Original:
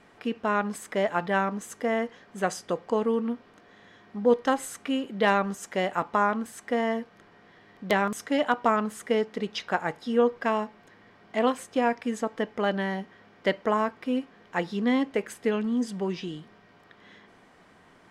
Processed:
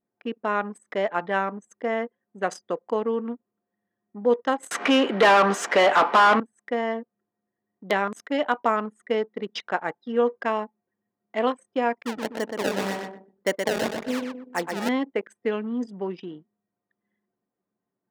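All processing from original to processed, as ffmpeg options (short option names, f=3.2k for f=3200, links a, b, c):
-filter_complex "[0:a]asettb=1/sr,asplit=3[a][b][c];[a]atrim=end=4.714[d];[b]atrim=start=4.71:end=6.4,asetpts=PTS-STARTPTS,afade=t=in:d=0.004:c=qsin,afade=t=out:st=1.686:d=0.004:c=qsin,highpass=150,acompressor=mode=upward:threshold=-42dB:ratio=2.5:attack=3.2:release=140:knee=2.83:detection=peak,asplit=2[e][f];[f]highpass=f=720:p=1,volume=29dB,asoftclip=type=tanh:threshold=-8.5dB[g];[e][g]amix=inputs=2:normalize=0,lowpass=f=2.1k:p=1,volume=-6dB[h];[c]atrim=start=6.396[i];[d][h]acrossfade=d=0.004:c1=hsin:c2=qsin[j];[j][i]acrossfade=d=0.004:c1=qsin:c2=hsin,asettb=1/sr,asplit=3[k][l][m];[k]atrim=end=12.054[n];[l]atrim=start=12.05:end=14.89,asetpts=PTS-STARTPTS,afade=t=in:d=0.004:c=qsin,afade=t=out:st=2.836:d=0.004:c=qsin,acrusher=samples=24:mix=1:aa=0.000001:lfo=1:lforange=38.4:lforate=1.9,aecho=1:1:123|246|369|492|615|738:0.562|0.264|0.124|0.0584|0.0274|0.0129,atrim=end_sample=125244[o];[m]atrim=start=14.886[p];[n][o]acrossfade=d=0.004:c1=hsin:c2=qsin[q];[q][p]acrossfade=d=0.004:c1=qsin:c2=hsin,anlmdn=2.51,highpass=240,highshelf=f=9.9k:g=-8.5,volume=1dB"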